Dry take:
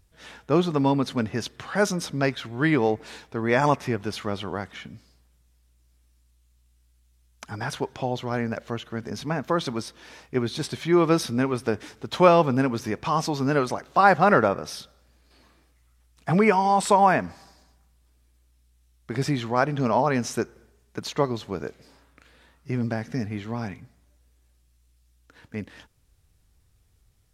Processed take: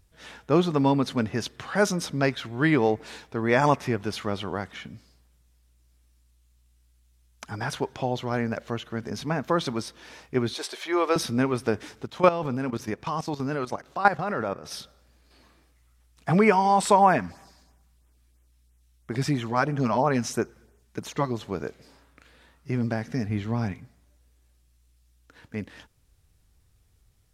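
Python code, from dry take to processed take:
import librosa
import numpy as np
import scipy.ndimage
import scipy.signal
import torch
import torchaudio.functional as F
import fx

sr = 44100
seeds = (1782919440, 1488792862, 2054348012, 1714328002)

y = fx.highpass(x, sr, hz=410.0, slope=24, at=(10.54, 11.16))
y = fx.level_steps(y, sr, step_db=14, at=(12.05, 14.7), fade=0.02)
y = fx.filter_lfo_notch(y, sr, shape='sine', hz=3.0, low_hz=390.0, high_hz=4700.0, q=1.4, at=(16.99, 21.41))
y = fx.low_shelf(y, sr, hz=180.0, db=8.0, at=(23.29, 23.73))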